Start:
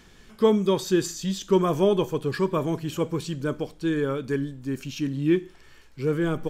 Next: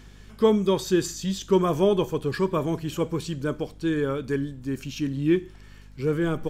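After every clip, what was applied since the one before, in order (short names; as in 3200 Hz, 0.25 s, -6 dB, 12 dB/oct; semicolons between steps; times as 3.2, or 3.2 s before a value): hum 50 Hz, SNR 23 dB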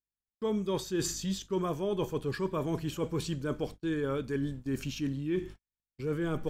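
gate -38 dBFS, range -56 dB; reverse; compressor 6:1, threshold -29 dBFS, peak gain reduction 14.5 dB; reverse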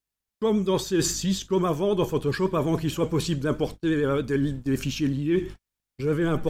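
vibrato 11 Hz 49 cents; gain +8 dB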